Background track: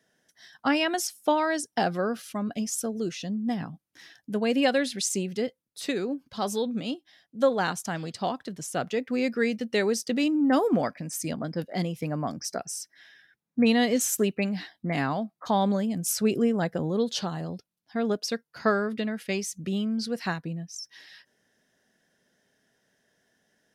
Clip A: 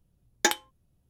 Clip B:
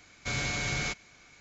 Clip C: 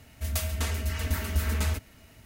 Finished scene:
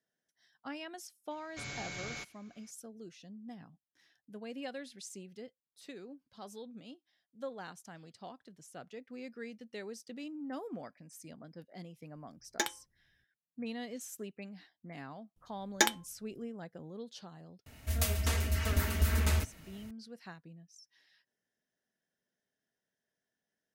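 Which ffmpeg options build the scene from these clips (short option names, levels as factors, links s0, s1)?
-filter_complex "[1:a]asplit=2[s0][s1];[0:a]volume=0.112[s2];[2:a]highpass=f=84:p=1,atrim=end=1.4,asetpts=PTS-STARTPTS,volume=0.299,afade=t=in:d=0.004:c=hsin,afade=t=out:st=1.396:d=0.004:c=hsin,adelay=1310[s3];[s0]atrim=end=1.09,asetpts=PTS-STARTPTS,volume=0.335,afade=t=in:d=0.004:c=hsin,afade=t=out:st=1.086:d=0.004:c=hsin,adelay=12150[s4];[s1]atrim=end=1.09,asetpts=PTS-STARTPTS,volume=0.708,afade=t=in:d=0.004:c=hsin,afade=t=out:st=1.086:d=0.004:c=hsin,adelay=15360[s5];[3:a]atrim=end=2.25,asetpts=PTS-STARTPTS,volume=0.841,afade=t=in:d=0.004:c=hsin,afade=t=out:st=2.246:d=0.004:c=hsin,adelay=17660[s6];[s2][s3][s4][s5][s6]amix=inputs=5:normalize=0"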